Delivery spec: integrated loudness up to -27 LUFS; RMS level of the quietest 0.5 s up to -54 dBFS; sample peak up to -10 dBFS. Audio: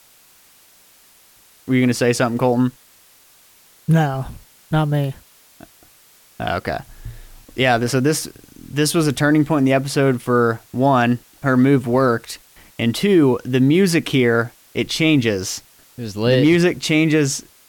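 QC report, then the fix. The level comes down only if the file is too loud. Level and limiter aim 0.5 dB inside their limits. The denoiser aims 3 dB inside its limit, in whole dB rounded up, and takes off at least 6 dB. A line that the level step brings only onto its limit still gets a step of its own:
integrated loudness -18.0 LUFS: fail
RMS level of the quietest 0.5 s -51 dBFS: fail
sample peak -5.5 dBFS: fail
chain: trim -9.5 dB

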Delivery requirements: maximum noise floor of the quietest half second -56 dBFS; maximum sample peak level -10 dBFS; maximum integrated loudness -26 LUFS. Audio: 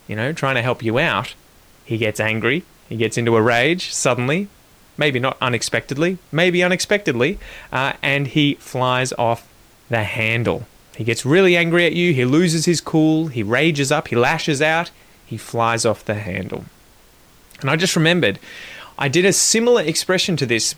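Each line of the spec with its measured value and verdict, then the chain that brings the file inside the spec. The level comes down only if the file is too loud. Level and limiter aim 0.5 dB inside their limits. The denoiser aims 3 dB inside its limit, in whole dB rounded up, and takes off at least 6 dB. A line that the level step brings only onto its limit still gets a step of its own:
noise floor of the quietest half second -50 dBFS: fail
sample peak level -5.5 dBFS: fail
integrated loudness -18.0 LUFS: fail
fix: trim -8.5 dB

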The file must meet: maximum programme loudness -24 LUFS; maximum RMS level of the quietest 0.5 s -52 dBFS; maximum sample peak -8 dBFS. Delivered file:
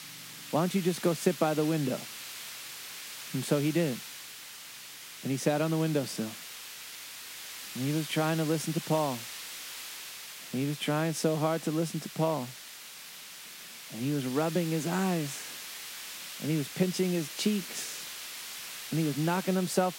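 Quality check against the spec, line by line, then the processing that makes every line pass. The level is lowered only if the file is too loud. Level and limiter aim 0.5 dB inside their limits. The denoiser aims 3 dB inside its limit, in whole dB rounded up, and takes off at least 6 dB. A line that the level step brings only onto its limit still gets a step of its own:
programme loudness -32.0 LUFS: pass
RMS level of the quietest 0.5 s -46 dBFS: fail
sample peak -12.5 dBFS: pass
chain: noise reduction 9 dB, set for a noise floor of -46 dBFS

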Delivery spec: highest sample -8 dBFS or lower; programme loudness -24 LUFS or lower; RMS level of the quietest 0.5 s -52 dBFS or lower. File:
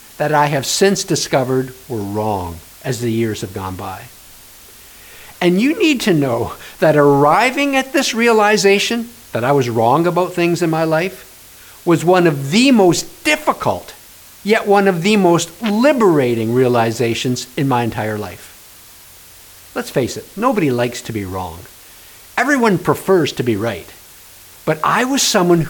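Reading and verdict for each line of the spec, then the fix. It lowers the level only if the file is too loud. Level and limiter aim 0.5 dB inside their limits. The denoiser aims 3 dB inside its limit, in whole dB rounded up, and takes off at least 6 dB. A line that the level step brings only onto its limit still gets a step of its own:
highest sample -1.5 dBFS: fail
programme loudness -15.5 LUFS: fail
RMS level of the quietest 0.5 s -41 dBFS: fail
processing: noise reduction 6 dB, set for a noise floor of -41 dBFS; trim -9 dB

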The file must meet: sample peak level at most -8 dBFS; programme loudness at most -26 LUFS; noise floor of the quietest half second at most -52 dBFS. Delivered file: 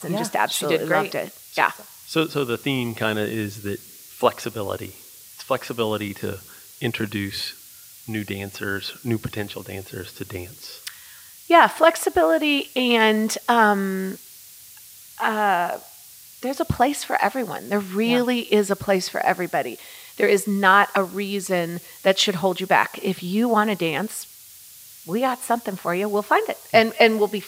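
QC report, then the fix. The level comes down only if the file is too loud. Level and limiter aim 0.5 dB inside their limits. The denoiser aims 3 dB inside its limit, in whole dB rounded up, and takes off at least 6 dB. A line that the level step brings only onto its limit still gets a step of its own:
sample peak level -1.5 dBFS: fail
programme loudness -22.0 LUFS: fail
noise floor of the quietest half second -45 dBFS: fail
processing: noise reduction 6 dB, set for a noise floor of -45 dBFS; trim -4.5 dB; peak limiter -8.5 dBFS

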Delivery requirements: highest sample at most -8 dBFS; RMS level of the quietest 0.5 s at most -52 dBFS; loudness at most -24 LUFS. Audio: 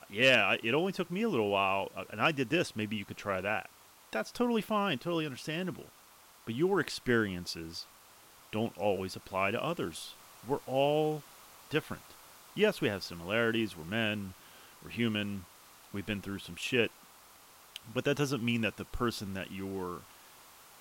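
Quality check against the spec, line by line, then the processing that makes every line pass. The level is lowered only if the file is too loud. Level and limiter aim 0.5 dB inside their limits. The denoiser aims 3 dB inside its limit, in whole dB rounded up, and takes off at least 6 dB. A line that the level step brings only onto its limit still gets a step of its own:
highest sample -12.5 dBFS: pass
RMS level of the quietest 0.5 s -58 dBFS: pass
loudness -32.5 LUFS: pass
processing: none needed

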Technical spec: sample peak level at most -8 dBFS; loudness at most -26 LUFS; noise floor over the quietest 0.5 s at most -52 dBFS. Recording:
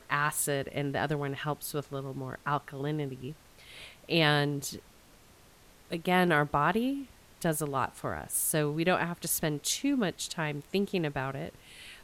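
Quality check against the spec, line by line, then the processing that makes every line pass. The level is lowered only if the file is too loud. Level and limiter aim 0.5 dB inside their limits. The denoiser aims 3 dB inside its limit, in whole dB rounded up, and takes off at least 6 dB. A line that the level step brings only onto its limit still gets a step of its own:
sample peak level -11.5 dBFS: pass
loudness -30.5 LUFS: pass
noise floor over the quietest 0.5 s -58 dBFS: pass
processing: none needed

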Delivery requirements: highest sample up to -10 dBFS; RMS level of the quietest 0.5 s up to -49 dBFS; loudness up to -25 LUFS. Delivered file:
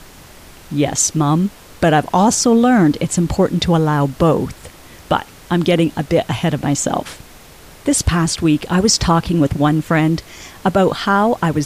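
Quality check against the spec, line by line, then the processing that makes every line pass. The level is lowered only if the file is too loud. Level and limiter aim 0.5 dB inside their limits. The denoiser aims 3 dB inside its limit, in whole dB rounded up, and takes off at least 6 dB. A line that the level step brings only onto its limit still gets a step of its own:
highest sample -3.0 dBFS: fail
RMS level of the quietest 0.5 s -40 dBFS: fail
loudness -16.0 LUFS: fail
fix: trim -9.5 dB

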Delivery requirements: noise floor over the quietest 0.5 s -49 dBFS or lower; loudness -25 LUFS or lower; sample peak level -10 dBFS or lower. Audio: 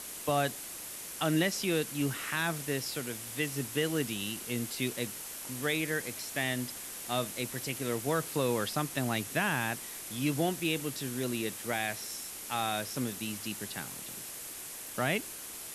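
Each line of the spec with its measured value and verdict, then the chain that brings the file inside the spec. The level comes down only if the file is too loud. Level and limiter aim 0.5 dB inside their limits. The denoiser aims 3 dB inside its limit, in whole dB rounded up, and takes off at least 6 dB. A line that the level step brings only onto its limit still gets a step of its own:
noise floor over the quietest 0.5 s -43 dBFS: fail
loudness -33.5 LUFS: pass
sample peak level -16.0 dBFS: pass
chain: noise reduction 9 dB, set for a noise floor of -43 dBFS

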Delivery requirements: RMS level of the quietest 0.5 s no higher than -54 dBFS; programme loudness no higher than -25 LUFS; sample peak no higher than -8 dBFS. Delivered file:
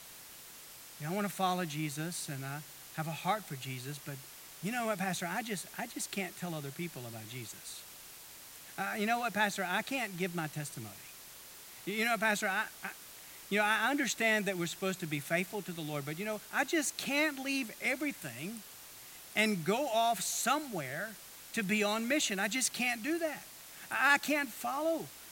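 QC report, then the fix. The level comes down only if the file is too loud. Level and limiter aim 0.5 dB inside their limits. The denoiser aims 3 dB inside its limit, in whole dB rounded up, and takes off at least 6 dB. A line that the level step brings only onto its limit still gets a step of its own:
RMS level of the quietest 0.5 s -52 dBFS: fail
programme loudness -34.0 LUFS: pass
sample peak -13.0 dBFS: pass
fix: noise reduction 6 dB, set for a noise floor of -52 dBFS

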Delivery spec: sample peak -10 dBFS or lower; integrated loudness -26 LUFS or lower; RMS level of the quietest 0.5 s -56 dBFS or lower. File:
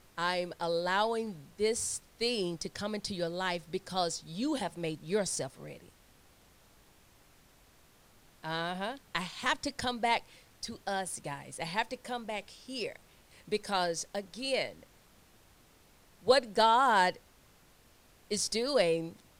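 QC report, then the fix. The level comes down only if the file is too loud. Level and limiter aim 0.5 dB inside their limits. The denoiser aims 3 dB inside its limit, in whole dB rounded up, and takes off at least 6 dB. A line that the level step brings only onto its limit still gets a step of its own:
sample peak -11.5 dBFS: pass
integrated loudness -32.5 LUFS: pass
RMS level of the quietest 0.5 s -62 dBFS: pass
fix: none needed

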